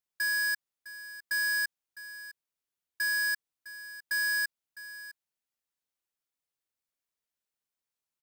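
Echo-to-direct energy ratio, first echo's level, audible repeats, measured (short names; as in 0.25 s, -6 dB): -15.5 dB, -15.5 dB, 1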